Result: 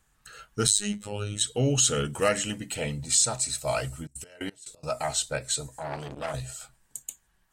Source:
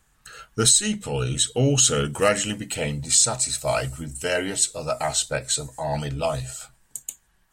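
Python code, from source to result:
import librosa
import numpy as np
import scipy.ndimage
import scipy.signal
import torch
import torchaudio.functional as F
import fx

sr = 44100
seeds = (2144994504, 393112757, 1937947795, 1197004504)

y = fx.robotise(x, sr, hz=103.0, at=(0.67, 1.41))
y = fx.step_gate(y, sr, bpm=177, pattern='.x..x..x', floor_db=-24.0, edge_ms=4.5, at=(4.05, 4.89), fade=0.02)
y = fx.transformer_sat(y, sr, knee_hz=1300.0, at=(5.69, 6.34))
y = y * 10.0 ** (-4.5 / 20.0)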